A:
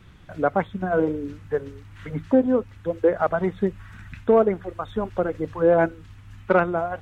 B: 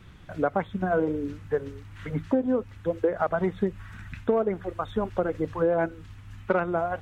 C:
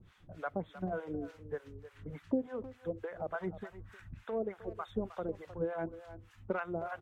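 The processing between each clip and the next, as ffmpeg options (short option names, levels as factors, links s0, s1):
-af "acompressor=threshold=0.1:ratio=6"
-filter_complex "[0:a]acrossover=split=670[s0][s1];[s0]aeval=exprs='val(0)*(1-1/2+1/2*cos(2*PI*3.4*n/s))':c=same[s2];[s1]aeval=exprs='val(0)*(1-1/2-1/2*cos(2*PI*3.4*n/s))':c=same[s3];[s2][s3]amix=inputs=2:normalize=0,asplit=2[s4][s5];[s5]adelay=310,highpass=300,lowpass=3400,asoftclip=type=hard:threshold=0.075,volume=0.224[s6];[s4][s6]amix=inputs=2:normalize=0,volume=0.473"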